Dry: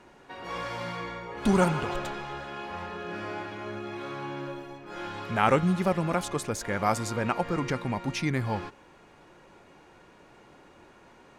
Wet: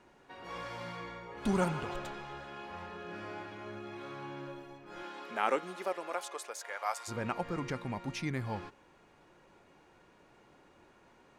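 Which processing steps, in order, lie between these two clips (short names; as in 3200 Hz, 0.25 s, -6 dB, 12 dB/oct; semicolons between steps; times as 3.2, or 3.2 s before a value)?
5.02–7.07 HPF 220 Hz -> 720 Hz 24 dB/oct; gain -7.5 dB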